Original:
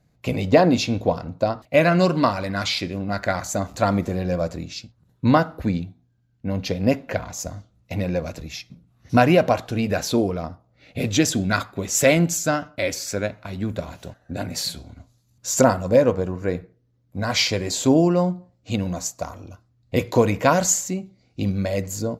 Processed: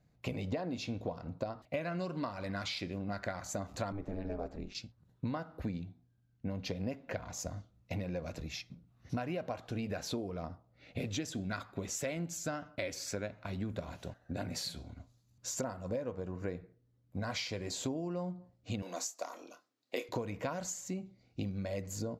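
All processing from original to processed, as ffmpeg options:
-filter_complex "[0:a]asettb=1/sr,asplit=3[s0][s1][s2];[s0]atrim=end=3.924[s3];[s1]atrim=start=3.92:end=4.75,asetpts=PTS-STARTPTS,afade=t=in:d=0.004:c=qsin,afade=t=out:st=0.826:d=0.004:c=qsin,lowpass=f=1900:p=1,aeval=exprs='val(0)*sin(2*PI*100*n/s)':c=same[s4];[s2]atrim=start=4.746[s5];[s3][s4]acrossfade=d=0.004:c1=hsin:c2=qsin[s6];[s6][s5]acrossfade=d=0.004:c1=qsin:c2=hsin,asettb=1/sr,asplit=3[s7][s8][s9];[s7]atrim=end=18.824[s10];[s8]atrim=start=18.82:end=20.09,asetpts=PTS-STARTPTS,afade=t=in:d=0.004:c=qsin,afade=t=out:st=1.266:d=0.004:c=qsin,highpass=f=300:w=0.5412,highpass=f=300:w=1.3066,highshelf=f=2100:g=7.5,asplit=2[s11][s12];[s12]adelay=27,volume=0.299[s13];[s11][s13]amix=inputs=2:normalize=0,atrim=end_sample=56007[s14];[s9]atrim=start=20.086[s15];[s10][s14]acrossfade=d=0.004:c1=hsin:c2=qsin[s16];[s16][s15]acrossfade=d=0.004:c1=qsin:c2=hsin,acompressor=threshold=0.0447:ratio=12,highshelf=f=7900:g=-7.5,volume=0.473"

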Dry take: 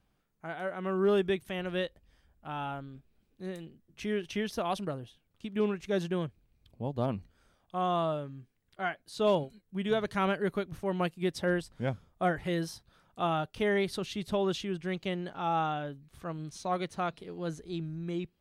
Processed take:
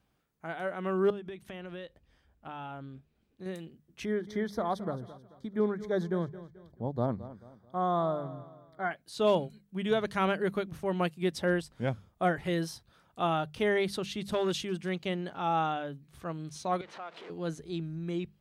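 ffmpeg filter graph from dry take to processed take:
-filter_complex "[0:a]asettb=1/sr,asplit=3[s0][s1][s2];[s0]atrim=end=1.104[s3];[s1]atrim=start=1.1:end=3.46,asetpts=PTS-STARTPTS,afade=t=in:d=0.004:c=qsin,afade=t=out:st=2.356:d=0.004:c=qsin,highshelf=f=7100:g=-8.5,acompressor=threshold=0.0126:ratio=12:attack=3.2:release=140:knee=1:detection=peak[s4];[s2]atrim=start=3.456[s5];[s3][s4]acrossfade=d=0.004:c1=hsin:c2=qsin[s6];[s6][s5]acrossfade=d=0.004:c1=qsin:c2=hsin,asettb=1/sr,asplit=3[s7][s8][s9];[s7]atrim=end=4.054[s10];[s8]atrim=start=4.05:end=8.91,asetpts=PTS-STARTPTS,afade=t=in:d=0.004:c=qsin,afade=t=out:st=4.856:d=0.004:c=qsin,asuperstop=centerf=2700:order=4:qfactor=1.9,equalizer=f=9000:t=o:w=2:g=-10.5,aecho=1:1:218|436|654:0.168|0.0655|0.0255,atrim=end_sample=214326[s11];[s9]atrim=start=8.906[s12];[s10][s11]acrossfade=d=0.004:c1=hsin:c2=qsin[s13];[s13][s12]acrossfade=d=0.004:c1=qsin:c2=hsin,asettb=1/sr,asplit=3[s14][s15][s16];[s14]atrim=end=14.294[s17];[s15]atrim=start=14.29:end=14.89,asetpts=PTS-STARTPTS,afade=t=in:d=0.004:c=qsin,afade=t=out:st=0.596:d=0.004:c=qsin,equalizer=f=10000:w=0.61:g=6,aeval=exprs='clip(val(0),-1,0.0501)':c=same[s18];[s16]atrim=start=14.886[s19];[s17][s18]acrossfade=d=0.004:c1=hsin:c2=qsin[s20];[s20][s19]acrossfade=d=0.004:c1=qsin:c2=hsin,asettb=1/sr,asplit=3[s21][s22][s23];[s21]atrim=end=16.814[s24];[s22]atrim=start=16.81:end=17.3,asetpts=PTS-STARTPTS,afade=t=in:d=0.004:c=qsin,afade=t=out:st=0.486:d=0.004:c=qsin,aeval=exprs='val(0)+0.5*0.0119*sgn(val(0))':c=same,acompressor=threshold=0.0126:ratio=6:attack=3.2:release=140:knee=1:detection=peak,highpass=500,lowpass=2900[s25];[s23]atrim=start=17.296[s26];[s24][s25]acrossfade=d=0.004:c1=hsin:c2=qsin[s27];[s27][s26]acrossfade=d=0.004:c1=qsin:c2=hsin,highpass=45,bandreject=f=50:t=h:w=6,bandreject=f=100:t=h:w=6,bandreject=f=150:t=h:w=6,bandreject=f=200:t=h:w=6,volume=1.12"

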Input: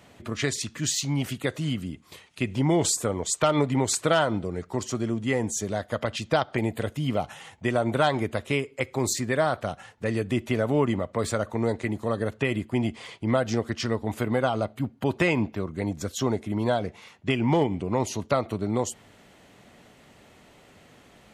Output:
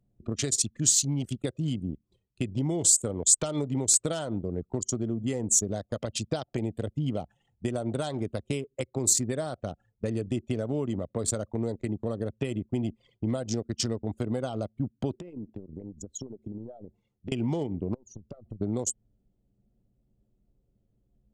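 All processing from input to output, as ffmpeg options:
-filter_complex "[0:a]asettb=1/sr,asplit=3[s0][s1][s2];[s0]atrim=end=15.134[s3];[s1]atrim=start=15.13:end=17.32,asetpts=PTS-STARTPTS,afade=t=in:d=0.004:c=qsin,afade=t=out:st=2.186:d=0.004:c=qsin,equalizer=f=360:t=o:w=1.5:g=2,acompressor=threshold=0.02:ratio=10:attack=3.2:release=140:knee=1:detection=peak[s4];[s2]atrim=start=17.316[s5];[s3][s4]acrossfade=d=0.004:c1=hsin:c2=qsin[s6];[s6][s5]acrossfade=d=0.004:c1=qsin:c2=hsin,asettb=1/sr,asplit=3[s7][s8][s9];[s7]atrim=end=17.944[s10];[s8]atrim=start=17.94:end=18.61,asetpts=PTS-STARTPTS,afade=t=in:d=0.004:c=qsin,afade=t=out:st=0.666:d=0.004:c=qsin,asubboost=boost=12:cutoff=160,acompressor=threshold=0.0158:ratio=10:attack=3.2:release=140:knee=1:detection=peak[s11];[s9]atrim=start=18.606[s12];[s10][s11]acrossfade=d=0.004:c1=hsin:c2=qsin[s13];[s13][s12]acrossfade=d=0.004:c1=qsin:c2=hsin,anlmdn=15.8,acompressor=threshold=0.0316:ratio=4,equalizer=f=1000:t=o:w=1:g=-8,equalizer=f=2000:t=o:w=1:g=-11,equalizer=f=8000:t=o:w=1:g=11,volume=1.58"

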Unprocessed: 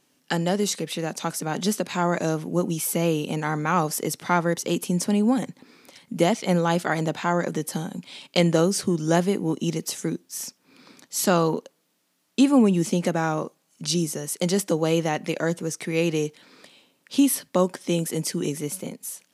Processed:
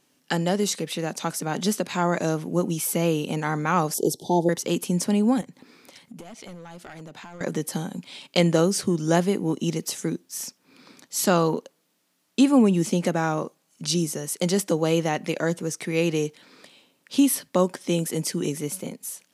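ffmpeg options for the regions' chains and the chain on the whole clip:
-filter_complex "[0:a]asettb=1/sr,asplit=3[s0][s1][s2];[s0]atrim=end=3.944[s3];[s1]atrim=start=3.94:end=4.49,asetpts=PTS-STARTPTS,afade=t=in:d=0.004:c=qsin,afade=t=out:st=0.546:d=0.004:c=qsin,asuperstop=centerf=1700:order=20:qfactor=0.74,equalizer=f=380:w=3:g=10,acompressor=mode=upward:threshold=0.0126:ratio=2.5:attack=3.2:release=140:knee=2.83:detection=peak[s4];[s2]atrim=start=4.486[s5];[s3][s4]acrossfade=d=0.004:c1=hsin:c2=qsin[s6];[s6][s5]acrossfade=d=0.004:c1=qsin:c2=hsin,asettb=1/sr,asplit=3[s7][s8][s9];[s7]atrim=end=5.414[s10];[s8]atrim=start=5.41:end=7.41,asetpts=PTS-STARTPTS,afade=t=in:d=0.004:c=qsin,afade=t=out:st=1.996:d=0.004:c=qsin,aeval=exprs='clip(val(0),-1,0.075)':c=same,acompressor=threshold=0.0126:ratio=10:attack=3.2:release=140:knee=1:detection=peak[s11];[s9]atrim=start=7.406[s12];[s10][s11]acrossfade=d=0.004:c1=hsin:c2=qsin[s13];[s13][s12]acrossfade=d=0.004:c1=qsin:c2=hsin"

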